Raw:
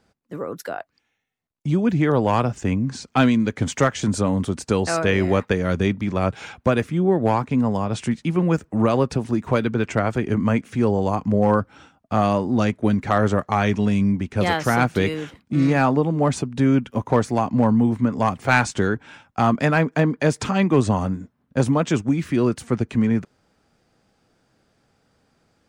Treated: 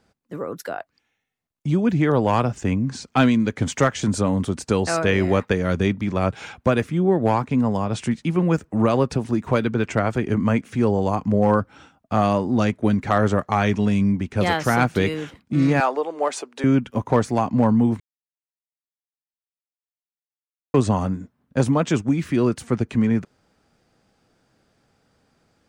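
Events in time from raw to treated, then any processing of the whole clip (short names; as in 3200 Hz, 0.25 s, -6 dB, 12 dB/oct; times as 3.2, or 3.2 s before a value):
15.8–16.64 HPF 420 Hz 24 dB/oct
18–20.74 mute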